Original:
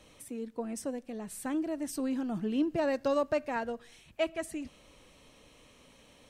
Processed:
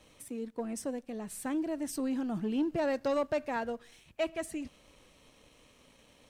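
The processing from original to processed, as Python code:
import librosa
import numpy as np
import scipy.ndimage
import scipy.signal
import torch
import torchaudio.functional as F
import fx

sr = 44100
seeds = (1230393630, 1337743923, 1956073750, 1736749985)

y = fx.leveller(x, sr, passes=1)
y = y * 10.0 ** (-3.5 / 20.0)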